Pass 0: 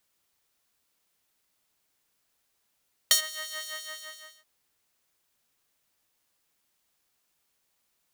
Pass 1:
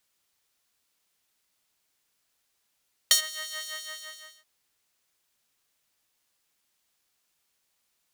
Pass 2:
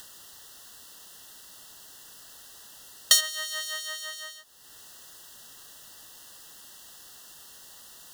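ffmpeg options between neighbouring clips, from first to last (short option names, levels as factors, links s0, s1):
-af "equalizer=f=4700:w=0.31:g=4,volume=0.75"
-af "acompressor=mode=upward:threshold=0.0251:ratio=2.5,asuperstop=centerf=2300:order=12:qfactor=3.4,volume=1.41"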